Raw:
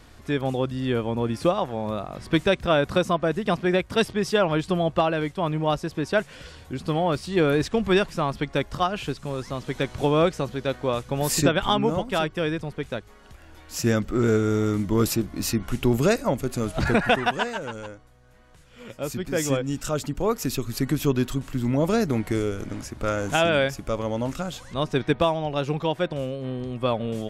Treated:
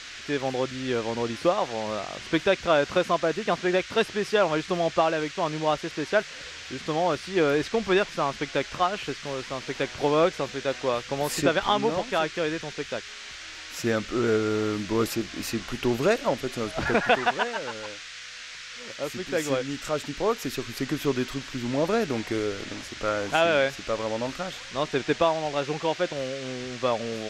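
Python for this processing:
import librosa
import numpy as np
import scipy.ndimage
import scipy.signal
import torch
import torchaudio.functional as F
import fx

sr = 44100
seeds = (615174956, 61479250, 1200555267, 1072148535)

y = fx.dmg_noise_band(x, sr, seeds[0], low_hz=1400.0, high_hz=6700.0, level_db=-38.0)
y = fx.bass_treble(y, sr, bass_db=-10, treble_db=-8)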